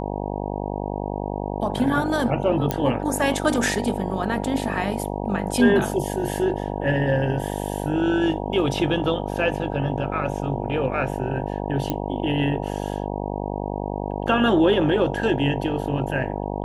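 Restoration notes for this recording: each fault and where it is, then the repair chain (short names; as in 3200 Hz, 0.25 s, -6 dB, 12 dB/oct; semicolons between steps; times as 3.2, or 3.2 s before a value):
buzz 50 Hz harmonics 19 -28 dBFS
2.71 pop -8 dBFS
11.9 pop -10 dBFS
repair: de-click; de-hum 50 Hz, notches 19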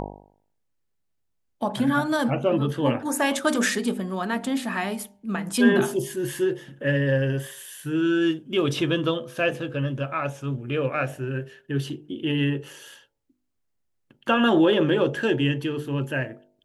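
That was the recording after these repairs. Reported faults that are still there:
none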